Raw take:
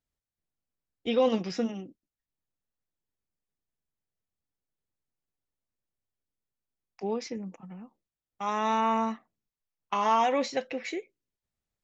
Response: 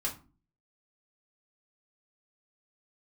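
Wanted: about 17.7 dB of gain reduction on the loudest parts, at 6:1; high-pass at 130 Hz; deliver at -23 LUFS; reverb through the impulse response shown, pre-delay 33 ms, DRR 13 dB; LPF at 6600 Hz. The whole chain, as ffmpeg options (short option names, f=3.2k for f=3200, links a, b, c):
-filter_complex "[0:a]highpass=130,lowpass=6.6k,acompressor=threshold=-39dB:ratio=6,asplit=2[a][b];[1:a]atrim=start_sample=2205,adelay=33[c];[b][c]afir=irnorm=-1:irlink=0,volume=-16.5dB[d];[a][d]amix=inputs=2:normalize=0,volume=20.5dB"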